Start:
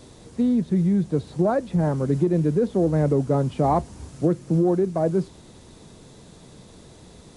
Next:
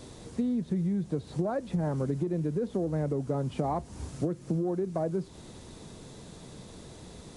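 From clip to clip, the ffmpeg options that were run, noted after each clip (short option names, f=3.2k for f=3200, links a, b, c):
-af "acompressor=threshold=-27dB:ratio=6"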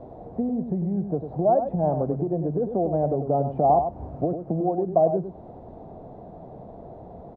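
-filter_complex "[0:a]lowpass=f=710:t=q:w=5.8,asplit=2[a][b];[b]aecho=0:1:100:0.376[c];[a][c]amix=inputs=2:normalize=0,volume=1.5dB"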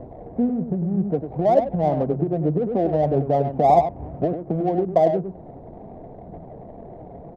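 -filter_complex "[0:a]flanger=delay=0:depth=7.5:regen=63:speed=0.63:shape=triangular,asplit=2[a][b];[b]adynamicsmooth=sensitivity=6.5:basefreq=870,volume=3dB[c];[a][c]amix=inputs=2:normalize=0"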